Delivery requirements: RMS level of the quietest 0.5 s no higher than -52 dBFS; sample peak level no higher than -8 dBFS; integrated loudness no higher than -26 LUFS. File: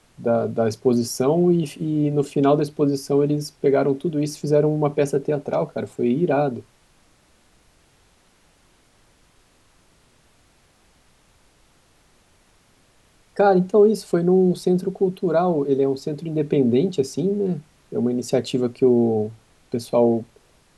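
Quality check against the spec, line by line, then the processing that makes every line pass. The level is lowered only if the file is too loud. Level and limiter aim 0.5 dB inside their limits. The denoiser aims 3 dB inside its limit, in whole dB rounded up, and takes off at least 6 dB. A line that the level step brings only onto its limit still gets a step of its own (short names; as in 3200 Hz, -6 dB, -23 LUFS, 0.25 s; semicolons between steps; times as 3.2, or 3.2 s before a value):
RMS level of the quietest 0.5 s -58 dBFS: OK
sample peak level -5.5 dBFS: fail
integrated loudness -21.0 LUFS: fail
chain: gain -5.5 dB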